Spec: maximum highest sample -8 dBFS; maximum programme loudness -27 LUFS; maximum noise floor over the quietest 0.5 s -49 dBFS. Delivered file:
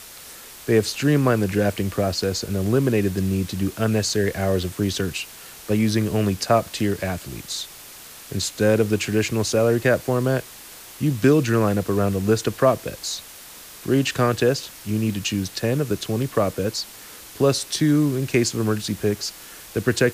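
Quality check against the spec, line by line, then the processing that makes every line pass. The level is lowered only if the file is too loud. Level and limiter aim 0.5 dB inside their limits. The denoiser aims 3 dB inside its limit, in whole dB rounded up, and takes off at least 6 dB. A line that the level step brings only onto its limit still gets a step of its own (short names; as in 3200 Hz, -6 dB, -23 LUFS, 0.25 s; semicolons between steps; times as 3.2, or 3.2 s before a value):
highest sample -5.5 dBFS: fail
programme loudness -22.0 LUFS: fail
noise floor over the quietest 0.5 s -42 dBFS: fail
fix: denoiser 6 dB, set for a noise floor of -42 dBFS; gain -5.5 dB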